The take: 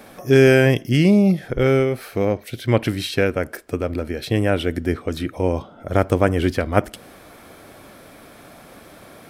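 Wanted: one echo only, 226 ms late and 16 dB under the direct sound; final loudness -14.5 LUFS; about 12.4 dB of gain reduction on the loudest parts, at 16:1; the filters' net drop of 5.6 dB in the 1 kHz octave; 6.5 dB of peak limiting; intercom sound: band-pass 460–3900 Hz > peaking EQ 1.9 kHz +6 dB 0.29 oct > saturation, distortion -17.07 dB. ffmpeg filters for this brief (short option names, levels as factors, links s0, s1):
-af "equalizer=f=1000:t=o:g=-8.5,acompressor=threshold=0.0794:ratio=16,alimiter=limit=0.119:level=0:latency=1,highpass=460,lowpass=3900,equalizer=f=1900:t=o:w=0.29:g=6,aecho=1:1:226:0.158,asoftclip=threshold=0.0562,volume=13.3"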